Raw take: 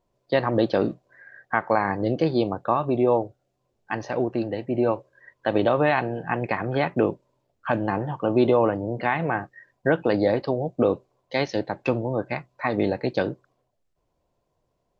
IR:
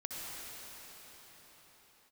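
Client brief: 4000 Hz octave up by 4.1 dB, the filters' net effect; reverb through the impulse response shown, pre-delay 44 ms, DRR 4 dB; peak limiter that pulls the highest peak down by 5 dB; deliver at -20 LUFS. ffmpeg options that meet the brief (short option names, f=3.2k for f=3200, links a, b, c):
-filter_complex "[0:a]equalizer=f=4k:t=o:g=5,alimiter=limit=-11dB:level=0:latency=1,asplit=2[a][b];[1:a]atrim=start_sample=2205,adelay=44[c];[b][c]afir=irnorm=-1:irlink=0,volume=-6dB[d];[a][d]amix=inputs=2:normalize=0,volume=4.5dB"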